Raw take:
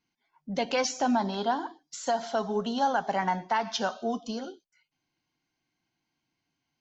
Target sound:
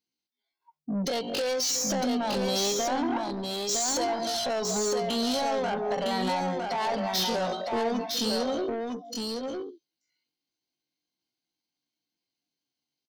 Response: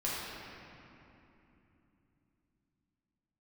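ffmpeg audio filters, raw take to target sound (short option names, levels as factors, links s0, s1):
-af "atempo=0.52,afftdn=nr=23:nf=-48,equalizer=f=250:t=o:w=1:g=6,equalizer=f=500:t=o:w=1:g=12,equalizer=f=4000:t=o:w=1:g=11,alimiter=limit=0.178:level=0:latency=1:release=137,acompressor=threshold=0.0501:ratio=6,aemphasis=mode=production:type=75kf,acontrast=79,asoftclip=type=tanh:threshold=0.0708,aecho=1:1:958:0.631,volume=0.75"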